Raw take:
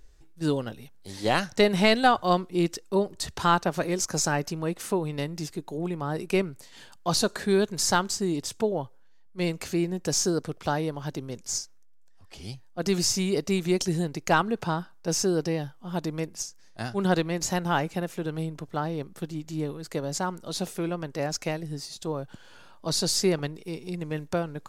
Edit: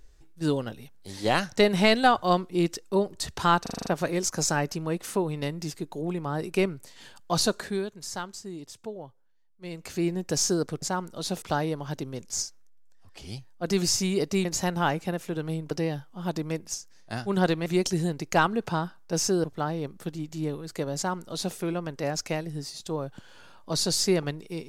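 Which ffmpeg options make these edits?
-filter_complex "[0:a]asplit=15[a][b][c][d][e][f][g][h][i][j][k][l][m][n][o];[a]atrim=end=3.662[p];[b]atrim=start=3.618:end=3.662[q];[c]atrim=start=3.618:end=3.662[r];[d]atrim=start=3.618:end=3.662[s];[e]atrim=start=3.618:end=3.662[t];[f]atrim=start=3.618:end=3.662[u];[g]atrim=start=3.618:end=7.63,asetpts=PTS-STARTPTS,afade=t=out:st=3.642:d=0.37:silence=0.266073[v];[h]atrim=start=7.63:end=9.46,asetpts=PTS-STARTPTS,volume=-11.5dB[w];[i]atrim=start=9.46:end=10.582,asetpts=PTS-STARTPTS,afade=t=in:d=0.37:silence=0.266073[x];[j]atrim=start=20.118:end=20.722[y];[k]atrim=start=10.578:end=13.612[z];[l]atrim=start=17.338:end=18.602[aa];[m]atrim=start=15.388:end=17.342[ab];[n]atrim=start=13.608:end=15.392[ac];[o]atrim=start=18.598[ad];[p][q]acrossfade=d=0.004:c1=hsin:c2=hsin[ae];[ae][r]acrossfade=d=0.004:c1=hsin:c2=hsin[af];[af][s]acrossfade=d=0.004:c1=hsin:c2=hsin[ag];[ag][t]acrossfade=d=0.004:c1=hsin:c2=hsin[ah];[ah][u]acrossfade=d=0.004:c1=hsin:c2=hsin[ai];[v][w][x]concat=n=3:v=0:a=1[aj];[ai][aj]acrossfade=d=0.004:c1=hsin:c2=hsin[ak];[ak][y]acrossfade=d=0.004:c1=hsin:c2=hsin[al];[al][z]acrossfade=d=0.004:c1=hsin:c2=hsin[am];[am][aa]acrossfade=d=0.004:c1=hsin:c2=hsin[an];[an][ab]acrossfade=d=0.004:c1=hsin:c2=hsin[ao];[ao][ac]acrossfade=d=0.004:c1=hsin:c2=hsin[ap];[ap][ad]acrossfade=d=0.004:c1=hsin:c2=hsin"

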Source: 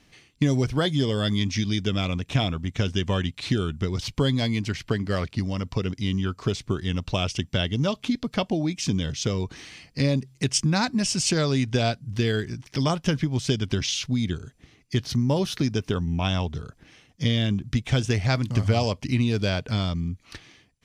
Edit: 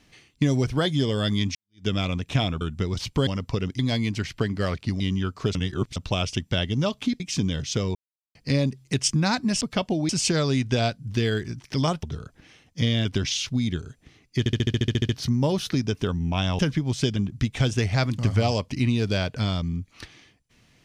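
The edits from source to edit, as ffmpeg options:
-filter_complex "[0:a]asplit=27[a][b][c][d][e][f][g][h][i][j][k][l][m][n][o][p][q][r][s][t][u][v][w][x][y][z][aa];[a]atrim=end=1.55,asetpts=PTS-STARTPTS,afade=t=out:st=1.546:d=0.004:c=hsin[ab];[b]atrim=start=1.55:end=2.612,asetpts=PTS-STARTPTS,afade=t=in:d=0.31:c=exp[ac];[c]atrim=start=3.628:end=4.292[ad];[d]atrim=start=5.498:end=6.022[ae];[e]atrim=start=4.288:end=5.502[af];[f]atrim=start=6.018:end=6.572[ag];[g]atrim=start=6.568:end=6.982,asetpts=PTS-STARTPTS,areverse[ah];[h]atrim=start=6.978:end=8.222[ai];[i]atrim=start=8.698:end=9.45,asetpts=PTS-STARTPTS,afade=t=out:st=0.748:d=0.004:c=hsin[aj];[j]atrim=start=9.45:end=9.85,asetpts=PTS-STARTPTS,volume=0[ak];[k]atrim=start=9.85:end=11.112,asetpts=PTS-STARTPTS,afade=t=in:d=0.004:c=hsin[al];[l]atrim=start=8.218:end=8.702[am];[m]atrim=start=11.108:end=13.052[an];[n]atrim=start=16.458:end=17.482[ao];[o]atrim=start=13.618:end=15.032[ap];[p]atrim=start=14.958:end=15.032[aq];[q]atrim=start=14.958:end=15.032[ar];[r]atrim=start=14.958:end=15.032[as];[s]atrim=start=14.958:end=15.032[at];[t]atrim=start=14.958:end=15.032[au];[u]atrim=start=14.958:end=15.032[av];[v]atrim=start=14.958:end=15.032[aw];[w]atrim=start=14.958:end=15.032[ax];[x]atrim=start=14.958:end=15.032[ay];[y]atrim=start=14.958:end=16.462[az];[z]atrim=start=13.048:end=13.622[ba];[aa]atrim=start=17.478[bb];[ab][ac]concat=n=2:v=0:a=1[bc];[bc][ad]acrossfade=d=0.004:c1=hsin:c2=hsin[bd];[bd][ae]acrossfade=d=0.004:c1=hsin:c2=hsin[be];[be][af]acrossfade=d=0.004:c1=hsin:c2=hsin[bf];[bf][ag]acrossfade=d=0.004:c1=hsin:c2=hsin[bg];[bg][ah]acrossfade=d=0.004:c1=hsin:c2=hsin[bh];[bh][ai]acrossfade=d=0.004:c1=hsin:c2=hsin[bi];[aj][ak][al]concat=n=3:v=0:a=1[bj];[bi][bj]acrossfade=d=0.004:c1=hsin:c2=hsin[bk];[bk][am]acrossfade=d=0.004:c1=hsin:c2=hsin[bl];[bl][an]acrossfade=d=0.004:c1=hsin:c2=hsin[bm];[bm][ao]acrossfade=d=0.004:c1=hsin:c2=hsin[bn];[bn][ap]acrossfade=d=0.004:c1=hsin:c2=hsin[bo];[bo][aq]acrossfade=d=0.004:c1=hsin:c2=hsin[bp];[bp][ar]acrossfade=d=0.004:c1=hsin:c2=hsin[bq];[bq][as]acrossfade=d=0.004:c1=hsin:c2=hsin[br];[br][at]acrossfade=d=0.004:c1=hsin:c2=hsin[bs];[bs][au]acrossfade=d=0.004:c1=hsin:c2=hsin[bt];[bt][av]acrossfade=d=0.004:c1=hsin:c2=hsin[bu];[bu][aw]acrossfade=d=0.004:c1=hsin:c2=hsin[bv];[bv][ax]acrossfade=d=0.004:c1=hsin:c2=hsin[bw];[bw][ay]acrossfade=d=0.004:c1=hsin:c2=hsin[bx];[bx][az]acrossfade=d=0.004:c1=hsin:c2=hsin[by];[by][ba]acrossfade=d=0.004:c1=hsin:c2=hsin[bz];[bz][bb]acrossfade=d=0.004:c1=hsin:c2=hsin"

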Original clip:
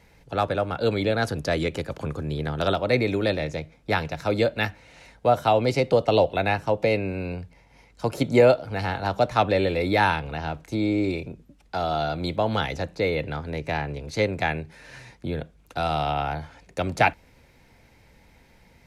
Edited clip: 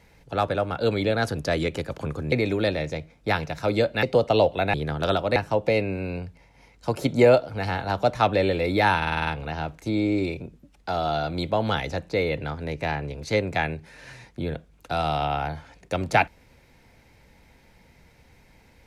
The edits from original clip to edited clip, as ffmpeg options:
-filter_complex "[0:a]asplit=11[a][b][c][d][e][f][g][h][i][j][k];[a]atrim=end=2.322[l];[b]atrim=start=2.938:end=4.652[m];[c]atrim=start=5.808:end=6.522[n];[d]atrim=start=2.318:end=2.942[o];[e]atrim=start=6.518:end=10.182[p];[f]atrim=start=10.128:end=10.182[q];[g]atrim=start=10.128:end=10.182[r];[h]atrim=start=10.128:end=10.182[s];[i]atrim=start=10.128:end=10.182[t];[j]atrim=start=10.128:end=10.182[u];[k]atrim=start=10.128[v];[l][m]acrossfade=d=0.004:c1=hsin:c2=hsin[w];[w][n]acrossfade=d=0.004:c1=hsin:c2=hsin[x];[x][o]acrossfade=d=0.004:c1=hsin:c2=hsin[y];[y][p]acrossfade=d=0.004:c1=hsin:c2=hsin[z];[z][q]acrossfade=d=0.004:c1=hsin:c2=hsin[aa];[aa][r]acrossfade=d=0.004:c1=hsin:c2=hsin[ab];[ab][s]acrossfade=d=0.004:c1=hsin:c2=hsin[ac];[ac][t]acrossfade=d=0.004:c1=hsin:c2=hsin[ad];[ad][u]acrossfade=d=0.004:c1=hsin:c2=hsin[ae];[ae][v]acrossfade=d=0.004:c1=hsin:c2=hsin"

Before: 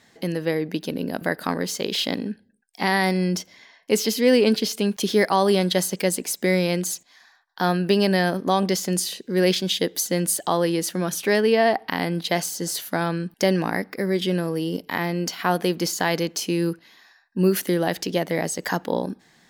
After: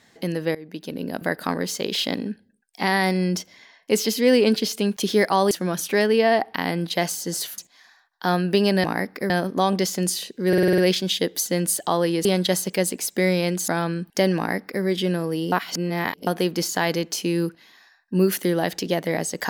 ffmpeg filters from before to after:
-filter_complex "[0:a]asplit=16[a][b][c][d][e][f][g][h][i][j][k][l][m][n][o][p];[a]atrim=end=0.55,asetpts=PTS-STARTPTS,afade=t=out:st=0.546:d=0.004:c=hsin:silence=0.105925[q];[b]atrim=start=0.55:end=5.512,asetpts=PTS-STARTPTS,afade=t=in:d=0.88:c=qsin:silence=0.105925[r];[c]atrim=start=10.848:end=12.922[s];[d]atrim=start=6.938:end=8.202[t];[e]atrim=start=13.608:end=14.072[u];[f]atrim=start=8.198:end=9.432[v];[g]atrim=start=9.378:end=9.432[w];[h]atrim=start=9.378:end=9.432[x];[i]atrim=start=9.378:end=9.432[y];[j]atrim=start=9.378:end=9.432[z];[k]atrim=start=9.378:end=9.432[aa];[l]atrim=start=9.378:end=10.852[ab];[m]atrim=start=5.508:end=6.942[ac];[n]atrim=start=12.918:end=14.762[ad];[o]atrim=start=14.758:end=15.512,asetpts=PTS-STARTPTS,areverse[ae];[p]atrim=start=15.508[af];[q][r]concat=n=2:v=0:a=1[ag];[ag][s]acrossfade=d=0.004:c1=hsin:c2=hsin[ah];[ah][t]acrossfade=d=0.004:c1=hsin:c2=hsin[ai];[ai][u]acrossfade=d=0.004:c1=hsin:c2=hsin[aj];[aj][v]acrossfade=d=0.004:c1=hsin:c2=hsin[ak];[ak][w]acrossfade=d=0.004:c1=hsin:c2=hsin[al];[al][x]acrossfade=d=0.004:c1=hsin:c2=hsin[am];[am][y]acrossfade=d=0.004:c1=hsin:c2=hsin[an];[an][z]acrossfade=d=0.004:c1=hsin:c2=hsin[ao];[ao][aa]acrossfade=d=0.004:c1=hsin:c2=hsin[ap];[ap][ab]acrossfade=d=0.004:c1=hsin:c2=hsin[aq];[aq][ac]acrossfade=d=0.004:c1=hsin:c2=hsin[ar];[ar][ad]acrossfade=d=0.004:c1=hsin:c2=hsin[as];[as][ae]acrossfade=d=0.004:c1=hsin:c2=hsin[at];[at][af]acrossfade=d=0.004:c1=hsin:c2=hsin"

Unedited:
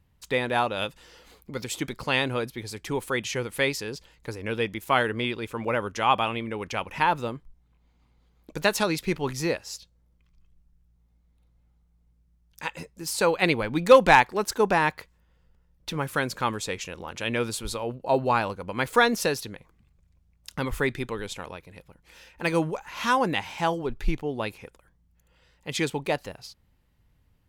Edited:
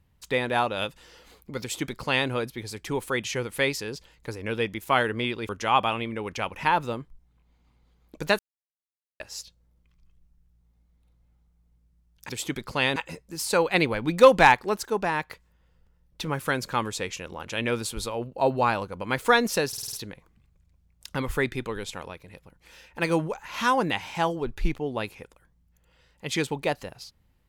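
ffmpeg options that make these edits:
-filter_complex "[0:a]asplit=13[a][b][c][d][e][f][g][h][i][j][k][l][m];[a]atrim=end=5.492[n];[b]atrim=start=5.838:end=8.74,asetpts=PTS-STARTPTS,afade=t=out:st=2.898:d=0.004:c=hsin[o];[c]atrim=start=8.74:end=9.55,asetpts=PTS-STARTPTS,volume=0[p];[d]atrim=start=9.55:end=12.642,asetpts=PTS-STARTPTS,afade=t=in:d=0.004:c=hsin[q];[e]atrim=start=1.608:end=2.282[r];[f]atrim=start=12.638:end=14.482[s];[g]atrim=start=14.478:end=14.982,asetpts=PTS-STARTPTS,volume=-4.5dB[t];[h]atrim=start=14.978:end=19.412[u];[i]atrim=start=19.358:end=19.412[v];[j]atrim=start=19.358:end=19.412[w];[k]atrim=start=19.358:end=19.412[x];[l]atrim=start=19.358:end=19.412[y];[m]atrim=start=19.358[z];[o][p][q]concat=n=3:v=0:a=1[aa];[n][aa]acrossfade=d=0.004:c1=hsin:c2=hsin[ab];[ab][r]acrossfade=d=0.004:c1=hsin:c2=hsin[ac];[ac][s]acrossfade=d=0.004:c1=hsin:c2=hsin[ad];[ad][t]acrossfade=d=0.004:c1=hsin:c2=hsin[ae];[ae][u]acrossfade=d=0.004:c1=hsin:c2=hsin[af];[af][v]acrossfade=d=0.004:c1=hsin:c2=hsin[ag];[ag][w]acrossfade=d=0.004:c1=hsin:c2=hsin[ah];[ah][x]acrossfade=d=0.004:c1=hsin:c2=hsin[ai];[ai][y]acrossfade=d=0.004:c1=hsin:c2=hsin[aj];[aj][z]acrossfade=d=0.004:c1=hsin:c2=hsin"

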